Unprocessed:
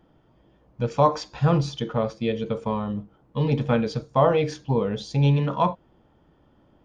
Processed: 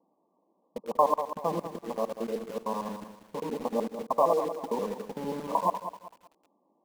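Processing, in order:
reversed piece by piece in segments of 76 ms
linear-phase brick-wall band-pass 170–1,200 Hz
low-shelf EQ 490 Hz −11.5 dB
in parallel at −5.5 dB: bit-depth reduction 6 bits, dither none
on the sum: feedback echo at a low word length 191 ms, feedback 35%, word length 8 bits, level −10.5 dB
level −3.5 dB

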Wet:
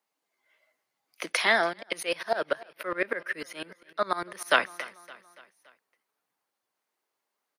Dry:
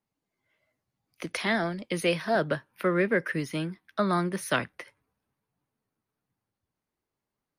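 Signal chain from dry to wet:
high-pass filter 550 Hz 12 dB per octave
repeating echo 284 ms, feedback 53%, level −20.5 dB
0:01.73–0:04.51: tremolo with a ramp in dB swelling 10 Hz, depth 21 dB
level +6 dB

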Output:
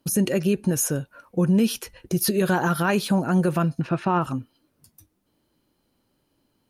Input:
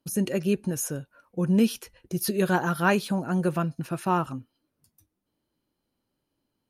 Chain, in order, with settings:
0:03.81–0:04.22: low-pass filter 3,400 Hz 12 dB per octave
in parallel at −2 dB: downward compressor, threshold −36 dBFS, peak gain reduction 18 dB
on the sum: brickwall limiter −17 dBFS, peak gain reduction 8.5 dB
level +4.5 dB

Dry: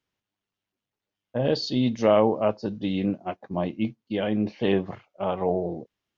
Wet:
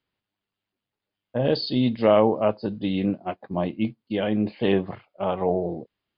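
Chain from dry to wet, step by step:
linear-phase brick-wall low-pass 5,100 Hz
level +1.5 dB

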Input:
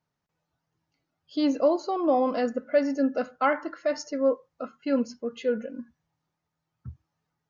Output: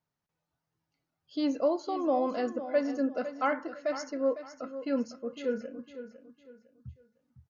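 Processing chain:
0:05.40–0:05.80: double-tracking delay 34 ms −9.5 dB
0:06.31–0:07.16: gain on a spectral selection 230–3,500 Hz −11 dB
repeating echo 505 ms, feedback 31%, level −12 dB
level −5 dB

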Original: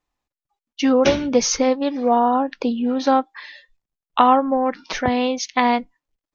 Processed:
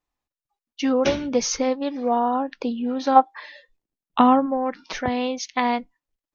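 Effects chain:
0:03.15–0:04.45: parametric band 890 Hz → 140 Hz +14 dB 1.4 octaves
level −4.5 dB

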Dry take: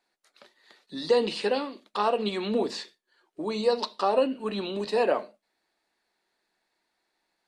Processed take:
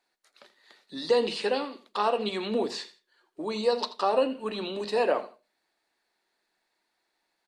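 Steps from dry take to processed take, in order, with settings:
low-shelf EQ 370 Hz −3 dB
mains-hum notches 50/100/150/200 Hz
on a send: repeating echo 83 ms, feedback 25%, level −16 dB

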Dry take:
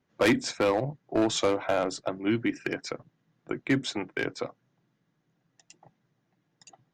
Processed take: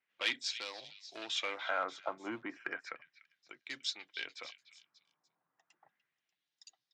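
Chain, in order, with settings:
auto-filter band-pass sine 0.33 Hz 980–4,600 Hz
echo through a band-pass that steps 294 ms, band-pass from 3,100 Hz, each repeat 0.7 octaves, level −11 dB
level +1 dB

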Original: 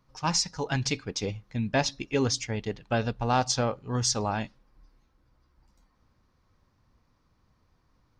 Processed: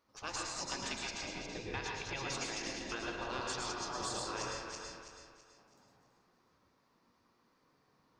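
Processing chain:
feedback delay that plays each chunk backwards 164 ms, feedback 61%, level −9 dB
0:01.13–0:02.09: high-shelf EQ 5,200 Hz −8.5 dB
gate on every frequency bin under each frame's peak −10 dB weak
downward compressor 4 to 1, threshold −36 dBFS, peak gain reduction 8 dB
convolution reverb RT60 0.80 s, pre-delay 103 ms, DRR −0.5 dB
level −3 dB

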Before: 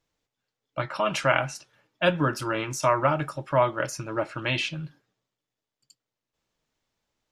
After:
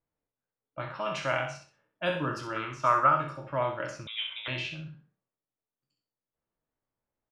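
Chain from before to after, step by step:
peak hold with a decay on every bin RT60 0.39 s
low-pass that shuts in the quiet parts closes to 1,500 Hz, open at −17 dBFS
0:02.56–0:03.17: parametric band 1,300 Hz +14 dB 0.46 octaves
repeating echo 64 ms, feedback 25%, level −8 dB
0:04.07–0:04.48: voice inversion scrambler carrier 3,700 Hz
level −9 dB

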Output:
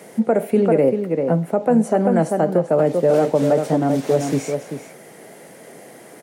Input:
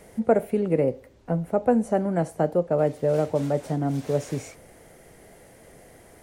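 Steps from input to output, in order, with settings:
high-pass filter 160 Hz 24 dB per octave
slap from a distant wall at 67 metres, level −7 dB
boost into a limiter +14.5 dB
level −6 dB

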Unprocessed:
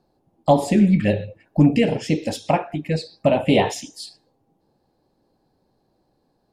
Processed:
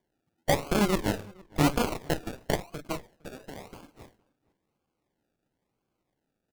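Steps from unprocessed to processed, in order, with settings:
0:02.97–0:03.73: downward compressor 2.5 to 1, threshold −34 dBFS, peak gain reduction 14.5 dB
harmonic generator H 3 −16 dB, 6 −11 dB, 7 −16 dB, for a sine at −4.5 dBFS
sample-and-hold swept by an LFO 33×, swing 60% 0.98 Hz
slap from a distant wall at 79 metres, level −25 dB
level −9 dB

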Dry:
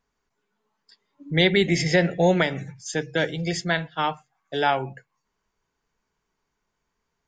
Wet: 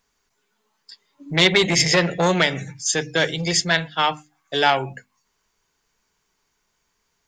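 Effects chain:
high-shelf EQ 2,400 Hz +11 dB
mains-hum notches 50/100/150/200/250/300 Hz
saturating transformer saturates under 1,500 Hz
level +3 dB

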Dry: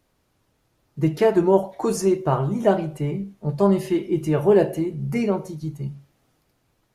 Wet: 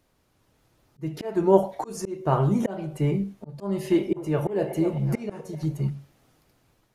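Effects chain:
automatic gain control gain up to 3.5 dB
volume swells 417 ms
0:03.66–0:05.90: echo through a band-pass that steps 253 ms, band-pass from 620 Hz, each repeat 0.7 octaves, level −5.5 dB

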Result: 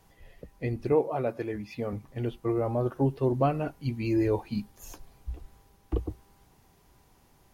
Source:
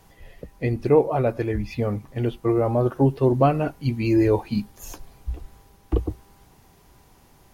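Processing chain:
0:00.92–0:01.93: high-pass filter 150 Hz 12 dB per octave
level −7 dB

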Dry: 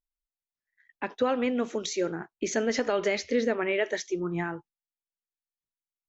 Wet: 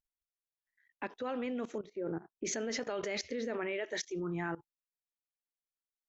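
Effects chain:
0:01.78–0:02.45: low-pass filter 1,000 Hz 12 dB per octave
output level in coarse steps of 18 dB

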